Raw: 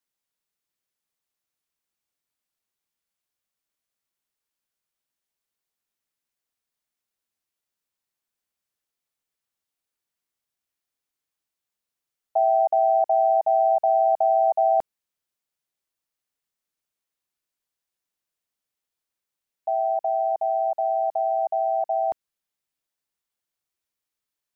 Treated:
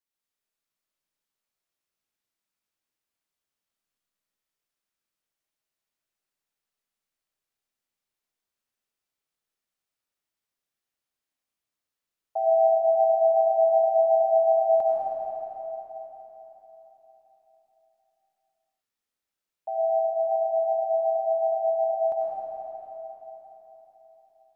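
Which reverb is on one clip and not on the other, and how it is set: algorithmic reverb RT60 4.2 s, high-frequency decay 0.75×, pre-delay 50 ms, DRR -6 dB; trim -7 dB

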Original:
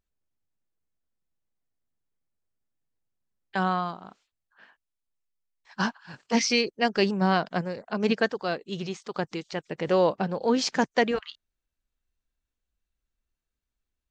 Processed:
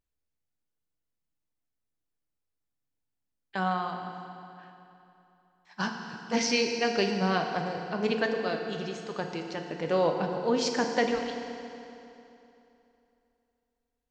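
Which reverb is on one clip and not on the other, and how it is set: FDN reverb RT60 3 s, high-frequency decay 0.85×, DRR 3 dB; trim -4 dB

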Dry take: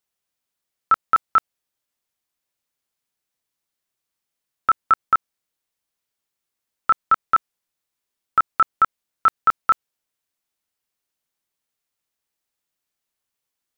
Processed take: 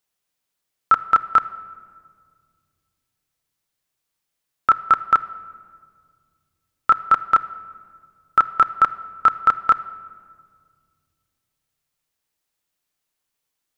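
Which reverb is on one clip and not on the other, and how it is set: simulated room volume 3300 m³, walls mixed, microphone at 0.48 m; trim +2.5 dB

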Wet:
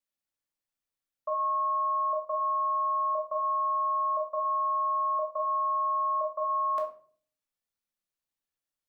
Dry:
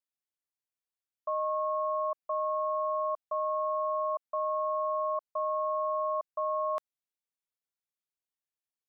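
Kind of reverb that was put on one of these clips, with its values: simulated room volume 410 m³, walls furnished, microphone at 2.4 m; trim -1 dB

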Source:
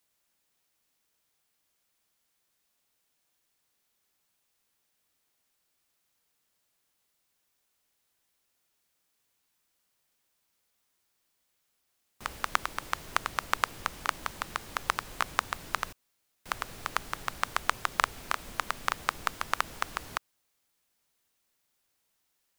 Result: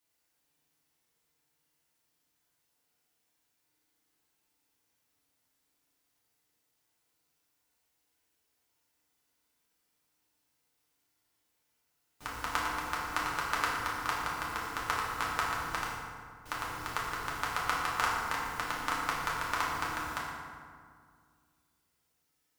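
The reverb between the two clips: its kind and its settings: FDN reverb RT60 2 s, low-frequency decay 1.3×, high-frequency decay 0.55×, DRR -6.5 dB; trim -7.5 dB

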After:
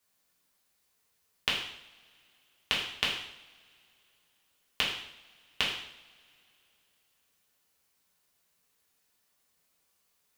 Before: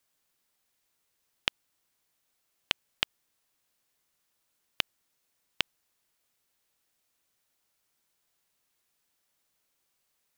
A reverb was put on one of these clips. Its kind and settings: two-slope reverb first 0.68 s, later 3.1 s, from -25 dB, DRR -5 dB; trim -3 dB

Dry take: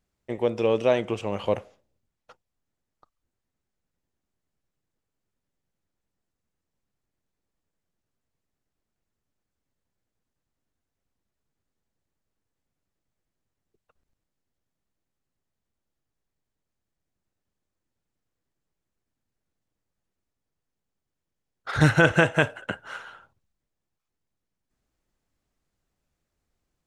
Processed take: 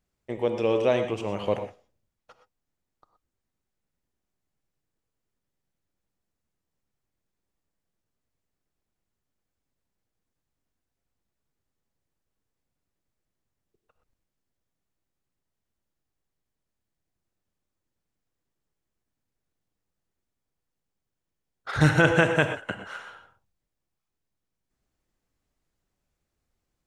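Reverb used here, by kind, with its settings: gated-style reverb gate 140 ms rising, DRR 7.5 dB; trim -1.5 dB

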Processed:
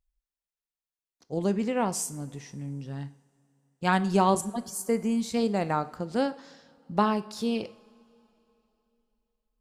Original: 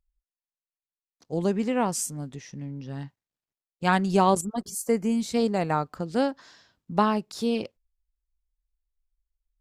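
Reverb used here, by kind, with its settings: two-slope reverb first 0.57 s, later 3.2 s, from -18 dB, DRR 13 dB; trim -2 dB

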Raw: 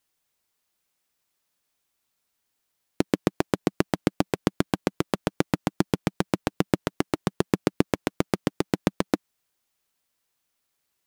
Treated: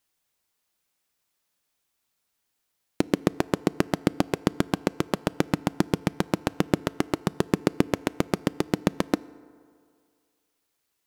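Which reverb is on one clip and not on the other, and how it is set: FDN reverb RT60 2.2 s, low-frequency decay 0.85×, high-frequency decay 0.45×, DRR 19 dB

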